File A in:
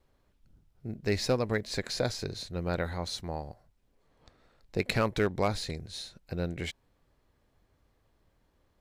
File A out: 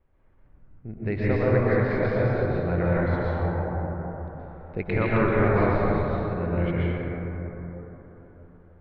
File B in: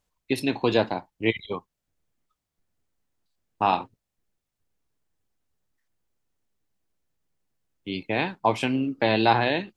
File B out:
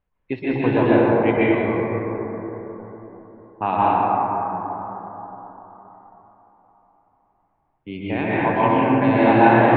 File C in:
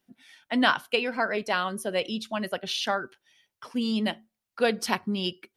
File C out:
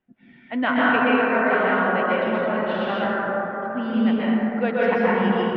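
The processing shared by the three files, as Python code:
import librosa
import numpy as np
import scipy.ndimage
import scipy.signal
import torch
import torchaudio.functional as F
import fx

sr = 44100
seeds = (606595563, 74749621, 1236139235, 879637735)

y = scipy.signal.sosfilt(scipy.signal.butter(4, 2500.0, 'lowpass', fs=sr, output='sos'), x)
y = fx.low_shelf(y, sr, hz=110.0, db=5.5)
y = fx.rev_plate(y, sr, seeds[0], rt60_s=4.2, hf_ratio=0.25, predelay_ms=110, drr_db=-8.5)
y = y * 10.0 ** (-1.5 / 20.0)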